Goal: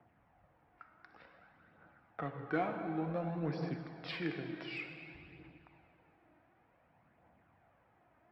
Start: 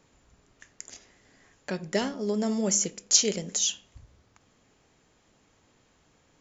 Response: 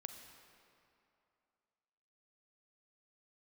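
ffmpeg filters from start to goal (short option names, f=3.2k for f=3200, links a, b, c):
-filter_complex "[0:a]acrossover=split=210|1900[a][b][c];[a]acompressor=threshold=-46dB:ratio=6[d];[d][b][c]amix=inputs=3:normalize=0,highpass=130,equalizer=f=270:t=q:w=4:g=-5,equalizer=f=510:t=q:w=4:g=-9,equalizer=f=960:t=q:w=4:g=8,lowpass=f=2.8k:w=0.5412,lowpass=f=2.8k:w=1.3066,asplit=2[e][f];[f]asoftclip=type=tanh:threshold=-32dB,volume=-12dB[g];[e][g]amix=inputs=2:normalize=0,asetrate=33957,aresample=44100[h];[1:a]atrim=start_sample=2205,asetrate=33957,aresample=44100[i];[h][i]afir=irnorm=-1:irlink=0,aphaser=in_gain=1:out_gain=1:delay=3.3:decay=0.37:speed=0.55:type=triangular,volume=-3dB"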